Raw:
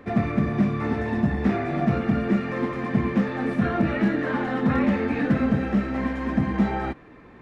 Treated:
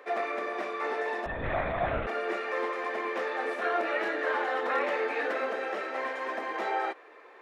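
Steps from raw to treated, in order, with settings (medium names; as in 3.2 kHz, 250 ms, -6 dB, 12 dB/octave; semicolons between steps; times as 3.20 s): steep high-pass 410 Hz 36 dB/octave; 1.26–2.07 s: LPC vocoder at 8 kHz whisper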